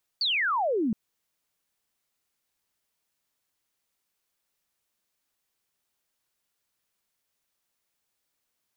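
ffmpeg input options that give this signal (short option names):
-f lavfi -i "aevalsrc='0.0708*clip(t/0.002,0,1)*clip((0.72-t)/0.002,0,1)*sin(2*PI*4700*0.72/log(200/4700)*(exp(log(200/4700)*t/0.72)-1))':d=0.72:s=44100"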